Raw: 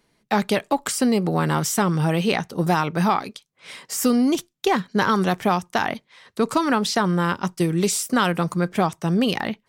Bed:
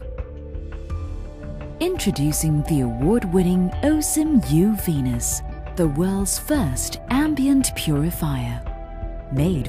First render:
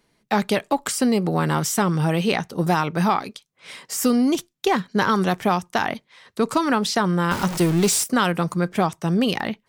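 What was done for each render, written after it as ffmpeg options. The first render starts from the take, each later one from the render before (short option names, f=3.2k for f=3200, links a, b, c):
-filter_complex "[0:a]asettb=1/sr,asplit=3[a][b][c];[a]atrim=end=7.314[d];[b]atrim=start=7.31:end=8.04,asetpts=PTS-STARTPTS,afade=t=in:d=0.004:c=qsin,afade=t=out:st=0.726:d=0.004:c=qsin,aeval=exprs='val(0)+0.5*0.0708*sgn(val(0))':c=same[e];[c]atrim=start=8.036[f];[d][e]acrossfade=d=0.004:c1=hsin:c2=qsin[g];[g][f]acrossfade=d=0.004:c1=qsin:c2=hsin"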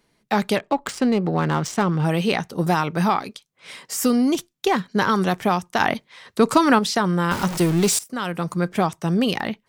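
-filter_complex "[0:a]asettb=1/sr,asplit=3[a][b][c];[a]atrim=end=0.574[d];[b]atrim=start=0.57:end=2.05,asetpts=PTS-STARTPTS,afade=t=in:d=0.004:c=qsin,afade=t=out:st=1.476:d=0.004:c=qsin,adynamicsmooth=sensitivity=2.5:basefreq=2.4k[e];[c]atrim=start=2.046[f];[d][e]acrossfade=d=0.004:c1=hsin:c2=qsin[g];[g][f]acrossfade=d=0.004:c1=qsin:c2=hsin,asplit=4[h][i][j][k];[h]atrim=end=5.802[l];[i]atrim=start=5.798:end=6.792,asetpts=PTS-STARTPTS,volume=4.5dB[m];[j]atrim=start=6.788:end=7.99,asetpts=PTS-STARTPTS,afade=t=out:st=1.198:d=0.004:c=hsin:silence=0.125893[n];[k]atrim=start=7.99,asetpts=PTS-STARTPTS,afade=t=in:d=0.64:silence=0.125893[o];[l][m]acrossfade=d=0.004:c1=hsin:c2=hsin[p];[n][o]concat=n=2:v=0:a=1[q];[p][q]acrossfade=d=0.004:c1=hsin:c2=hsin"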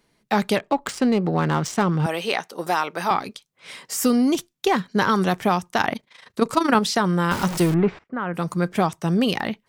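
-filter_complex "[0:a]asettb=1/sr,asplit=3[a][b][c];[a]atrim=end=2.064[d];[b]atrim=start=2.06:end=3.11,asetpts=PTS-STARTPTS,afade=t=in:d=0.004:c=qsin,afade=t=out:st=1.046:d=0.004:c=qsin,highpass=440[e];[c]atrim=start=3.106[f];[d][e]acrossfade=d=0.004:c1=hsin:c2=qsin[g];[g][f]acrossfade=d=0.004:c1=qsin:c2=hsin,asettb=1/sr,asplit=3[h][i][j];[h]atrim=end=5.814[k];[i]atrim=start=5.81:end=6.75,asetpts=PTS-STARTPTS,afade=t=in:d=0.004:c=qsin,afade=t=out:st=0.936:d=0.004:c=qsin,tremolo=f=26:d=0.788[l];[j]atrim=start=6.746[m];[k][l]acrossfade=d=0.004:c1=hsin:c2=qsin[n];[n][m]acrossfade=d=0.004:c1=qsin:c2=hsin,asettb=1/sr,asplit=3[o][p][q];[o]atrim=end=7.744[r];[p]atrim=start=7.74:end=8.34,asetpts=PTS-STARTPTS,afade=t=in:d=0.004:c=qsin,afade=t=out:st=0.596:d=0.004:c=qsin,lowpass=f=2k:w=0.5412,lowpass=f=2k:w=1.3066[s];[q]atrim=start=8.336[t];[r][s]acrossfade=d=0.004:c1=hsin:c2=qsin[u];[u][t]acrossfade=d=0.004:c1=qsin:c2=hsin"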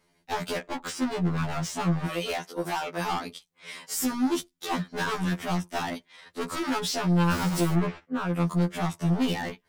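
-af "volume=23dB,asoftclip=hard,volume=-23dB,afftfilt=real='re*2*eq(mod(b,4),0)':imag='im*2*eq(mod(b,4),0)':win_size=2048:overlap=0.75"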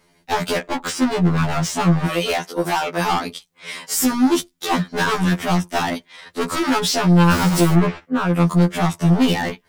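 -af "volume=9.5dB"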